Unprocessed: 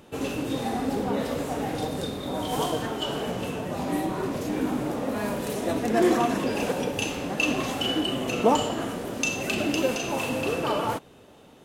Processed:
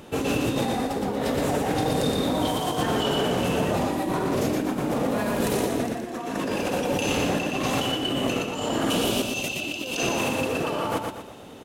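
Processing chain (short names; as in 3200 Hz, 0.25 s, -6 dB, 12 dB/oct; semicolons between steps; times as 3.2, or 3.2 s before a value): 8.9–9.97 resonant high shelf 2300 Hz +6.5 dB, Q 3; negative-ratio compressor -31 dBFS, ratio -1; feedback echo 0.119 s, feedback 39%, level -4 dB; gain +3 dB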